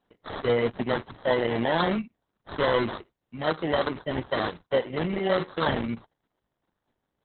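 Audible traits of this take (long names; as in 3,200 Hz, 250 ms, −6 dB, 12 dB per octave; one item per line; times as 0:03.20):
aliases and images of a low sample rate 2,500 Hz, jitter 0%
Opus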